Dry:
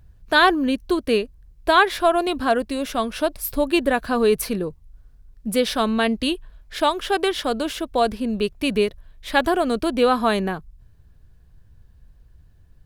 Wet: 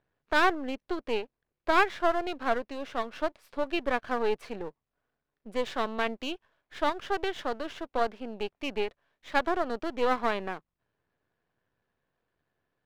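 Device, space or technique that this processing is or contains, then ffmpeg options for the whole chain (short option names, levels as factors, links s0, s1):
crystal radio: -af "highpass=390,lowpass=2600,aeval=exprs='if(lt(val(0),0),0.251*val(0),val(0))':c=same,volume=0.596"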